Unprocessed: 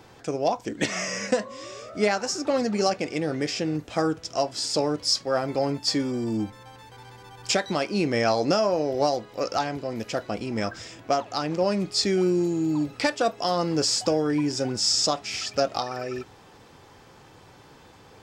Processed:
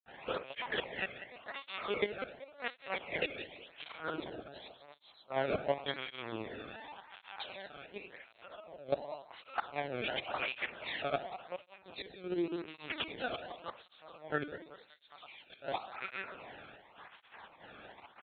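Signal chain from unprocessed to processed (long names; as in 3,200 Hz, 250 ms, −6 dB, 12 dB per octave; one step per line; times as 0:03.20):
every bin's largest magnitude spread in time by 60 ms
spectral tilt +4 dB per octave
in parallel at −2.5 dB: brickwall limiter −7.5 dBFS, peak gain reduction 10 dB
on the sum: gate pattern ".xx.xxxx..xx" 147 BPM −12 dB
low-pass that shuts in the quiet parts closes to 2,200 Hz, open at −14 dBFS
granular cloud 100 ms, grains 20 per second, pitch spread up and down by 0 semitones
gate with flip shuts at −9 dBFS, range −25 dB
echo with shifted repeats 192 ms, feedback 47%, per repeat +57 Hz, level −14 dB
rectangular room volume 2,300 cubic metres, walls furnished, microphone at 1.1 metres
linear-prediction vocoder at 8 kHz pitch kept
through-zero flanger with one copy inverted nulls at 0.9 Hz, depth 1.1 ms
level −3.5 dB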